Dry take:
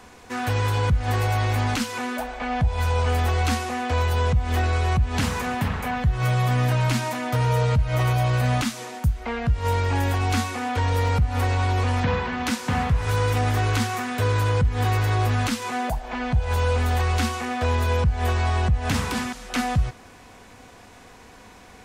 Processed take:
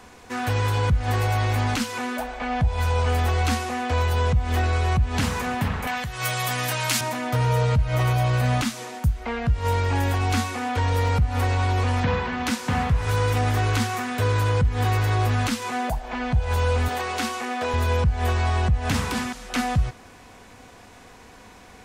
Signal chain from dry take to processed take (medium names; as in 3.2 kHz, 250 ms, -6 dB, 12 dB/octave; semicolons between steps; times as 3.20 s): 5.87–7.01 s: tilt EQ +3.5 dB/octave; 16.88–17.74 s: high-pass 240 Hz 12 dB/octave